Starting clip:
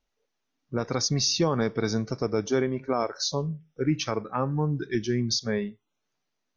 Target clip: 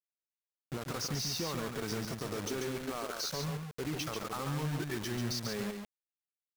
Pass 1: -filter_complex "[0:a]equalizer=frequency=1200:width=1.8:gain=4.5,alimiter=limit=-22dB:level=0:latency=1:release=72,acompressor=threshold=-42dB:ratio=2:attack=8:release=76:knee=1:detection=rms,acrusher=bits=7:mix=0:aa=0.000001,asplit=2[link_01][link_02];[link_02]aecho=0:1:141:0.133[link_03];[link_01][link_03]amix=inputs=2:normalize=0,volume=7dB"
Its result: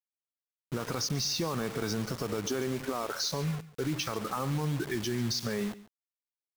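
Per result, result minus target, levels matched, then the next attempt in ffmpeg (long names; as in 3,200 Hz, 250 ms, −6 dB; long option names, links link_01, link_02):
echo-to-direct −12 dB; downward compressor: peak gain reduction −5.5 dB
-filter_complex "[0:a]equalizer=frequency=1200:width=1.8:gain=4.5,alimiter=limit=-22dB:level=0:latency=1:release=72,acompressor=threshold=-42dB:ratio=2:attack=8:release=76:knee=1:detection=rms,acrusher=bits=7:mix=0:aa=0.000001,asplit=2[link_01][link_02];[link_02]aecho=0:1:141:0.531[link_03];[link_01][link_03]amix=inputs=2:normalize=0,volume=7dB"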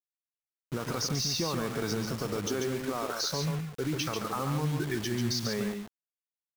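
downward compressor: peak gain reduction −5.5 dB
-filter_complex "[0:a]equalizer=frequency=1200:width=1.8:gain=4.5,alimiter=limit=-22dB:level=0:latency=1:release=72,acompressor=threshold=-53dB:ratio=2:attack=8:release=76:knee=1:detection=rms,acrusher=bits=7:mix=0:aa=0.000001,asplit=2[link_01][link_02];[link_02]aecho=0:1:141:0.531[link_03];[link_01][link_03]amix=inputs=2:normalize=0,volume=7dB"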